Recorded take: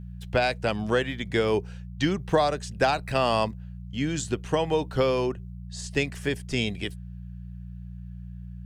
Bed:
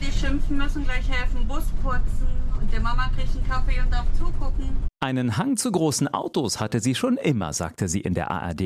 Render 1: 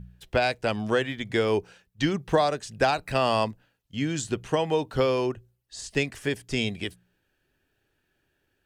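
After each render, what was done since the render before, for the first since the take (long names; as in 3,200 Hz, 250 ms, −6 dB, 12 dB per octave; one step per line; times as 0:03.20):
hum removal 60 Hz, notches 3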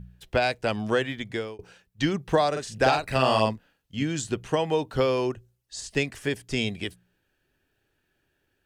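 0:01.17–0:01.59: fade out
0:02.51–0:04.03: double-tracking delay 46 ms −3 dB
0:05.26–0:05.80: parametric band 6,500 Hz +4.5 dB 1.2 octaves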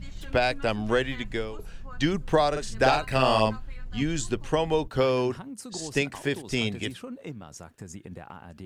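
mix in bed −17 dB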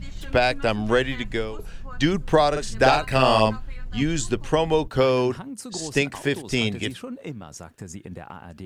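level +4 dB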